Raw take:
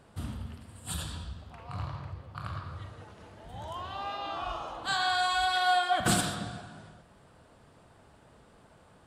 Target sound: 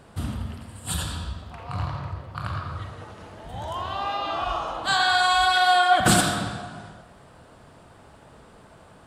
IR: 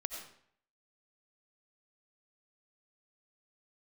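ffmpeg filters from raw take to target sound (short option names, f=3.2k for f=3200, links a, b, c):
-filter_complex "[0:a]asplit=2[a][b];[b]equalizer=f=1k:t=o:w=2.6:g=11[c];[1:a]atrim=start_sample=2205,adelay=86[d];[c][d]afir=irnorm=-1:irlink=0,volume=-15.5dB[e];[a][e]amix=inputs=2:normalize=0,volume=7.5dB"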